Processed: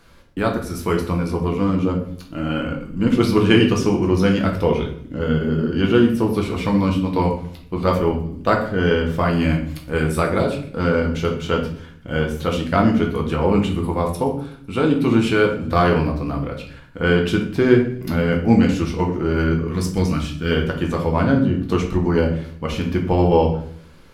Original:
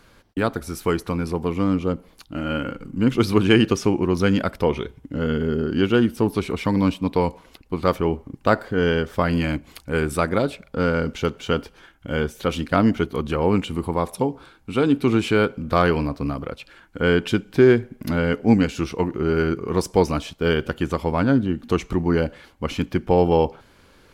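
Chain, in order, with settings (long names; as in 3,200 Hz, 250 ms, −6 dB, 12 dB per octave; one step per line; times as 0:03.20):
0:19.68–0:20.51: flat-topped bell 630 Hz −10 dB
delay with a high-pass on its return 126 ms, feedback 57%, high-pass 4,700 Hz, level −18 dB
convolution reverb RT60 0.60 s, pre-delay 6 ms, DRR 0.5 dB
level −1 dB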